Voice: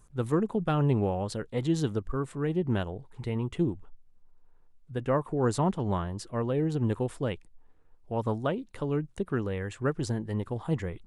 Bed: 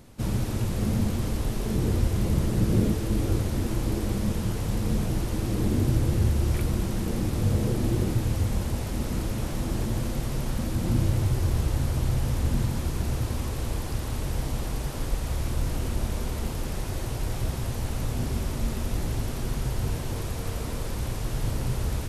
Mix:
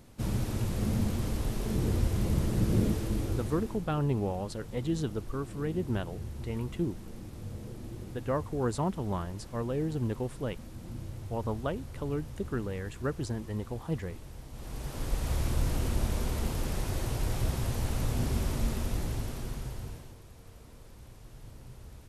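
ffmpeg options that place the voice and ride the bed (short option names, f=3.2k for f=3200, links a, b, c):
-filter_complex "[0:a]adelay=3200,volume=-4dB[a];[1:a]volume=11.5dB,afade=t=out:st=2.96:d=0.9:silence=0.223872,afade=t=in:st=14.51:d=0.81:silence=0.16788,afade=t=out:st=18.54:d=1.63:silence=0.112202[b];[a][b]amix=inputs=2:normalize=0"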